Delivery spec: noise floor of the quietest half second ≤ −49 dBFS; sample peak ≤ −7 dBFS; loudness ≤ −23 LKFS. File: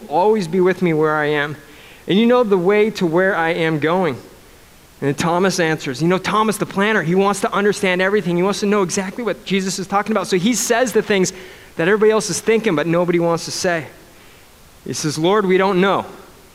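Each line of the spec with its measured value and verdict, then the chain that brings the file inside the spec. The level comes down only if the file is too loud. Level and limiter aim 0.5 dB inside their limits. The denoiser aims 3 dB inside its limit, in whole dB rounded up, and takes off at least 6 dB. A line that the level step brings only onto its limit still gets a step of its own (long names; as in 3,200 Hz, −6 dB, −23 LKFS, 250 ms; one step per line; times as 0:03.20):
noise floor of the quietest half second −45 dBFS: out of spec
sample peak −5.0 dBFS: out of spec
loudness −17.0 LKFS: out of spec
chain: level −6.5 dB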